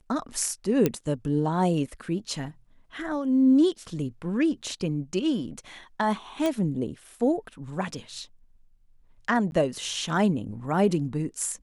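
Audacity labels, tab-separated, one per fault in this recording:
0.860000	0.860000	pop -9 dBFS
6.460000	6.460000	pop -14 dBFS
9.510000	9.520000	gap 11 ms

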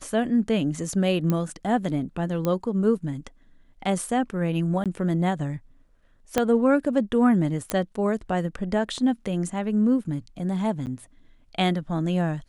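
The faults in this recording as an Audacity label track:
1.300000	1.300000	pop -12 dBFS
2.450000	2.450000	pop -13 dBFS
4.840000	4.860000	gap 17 ms
6.380000	6.380000	pop -7 dBFS
7.700000	7.700000	pop -8 dBFS
10.860000	10.870000	gap 9 ms

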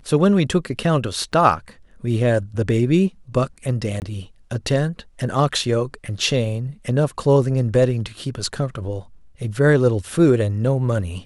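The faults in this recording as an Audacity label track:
1.320000	1.330000	gap 8.3 ms
4.000000	4.020000	gap 19 ms

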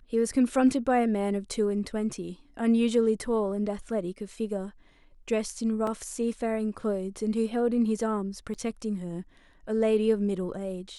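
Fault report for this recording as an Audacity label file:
5.870000	5.870000	gap 2.7 ms
8.540000	8.550000	gap 7 ms

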